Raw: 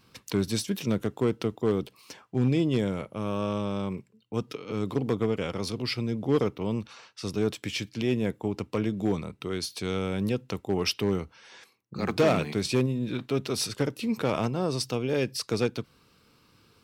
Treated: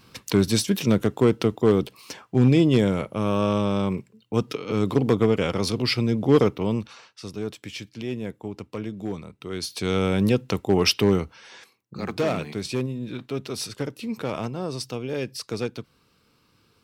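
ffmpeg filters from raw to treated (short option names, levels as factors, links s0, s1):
-af "volume=8.41,afade=t=out:st=6.45:d=0.84:silence=0.281838,afade=t=in:st=9.4:d=0.65:silence=0.266073,afade=t=out:st=11.03:d=1.07:silence=0.334965"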